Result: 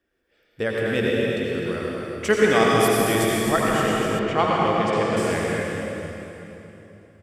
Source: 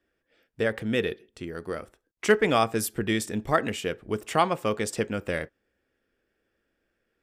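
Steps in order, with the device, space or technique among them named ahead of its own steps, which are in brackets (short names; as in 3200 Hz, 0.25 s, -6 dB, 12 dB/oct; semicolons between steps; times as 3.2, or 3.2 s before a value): cave (echo 0.255 s -9 dB; reverb RT60 3.2 s, pre-delay 76 ms, DRR -4 dB); 4.19–5.17 LPF 3900 Hz 12 dB/oct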